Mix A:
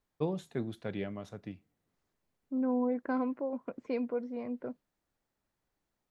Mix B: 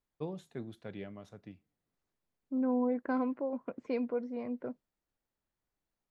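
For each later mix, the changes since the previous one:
first voice -6.5 dB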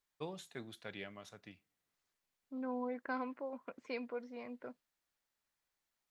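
second voice -4.0 dB; master: add tilt shelf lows -8.5 dB, about 840 Hz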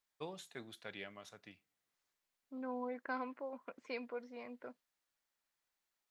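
master: add bass shelf 290 Hz -6 dB

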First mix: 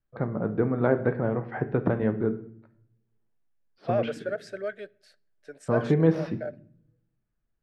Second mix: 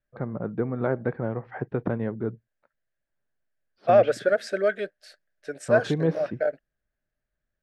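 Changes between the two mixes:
second voice +10.0 dB; reverb: off

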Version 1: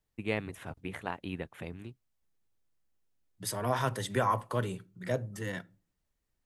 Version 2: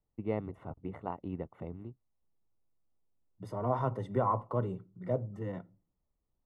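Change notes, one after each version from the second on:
master: add Savitzky-Golay filter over 65 samples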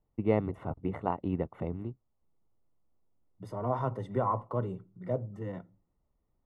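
first voice +7.0 dB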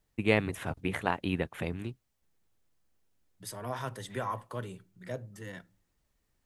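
second voice -6.5 dB; master: remove Savitzky-Golay filter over 65 samples

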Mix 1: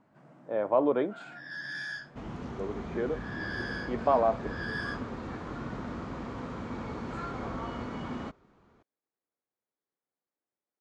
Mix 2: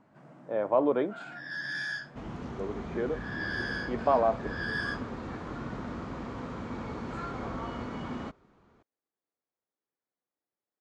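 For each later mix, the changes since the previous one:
first sound +3.0 dB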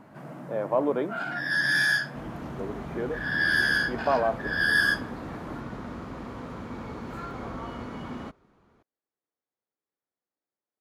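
first sound +11.5 dB; master: remove steep low-pass 8.4 kHz 36 dB/octave

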